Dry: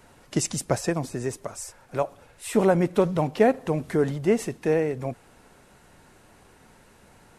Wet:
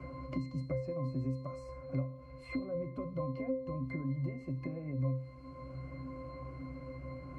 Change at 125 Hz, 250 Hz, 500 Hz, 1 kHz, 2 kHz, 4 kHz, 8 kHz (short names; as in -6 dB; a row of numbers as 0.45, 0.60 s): -5.5 dB, -11.5 dB, -16.5 dB, -17.0 dB, -15.5 dB, under -15 dB, under -35 dB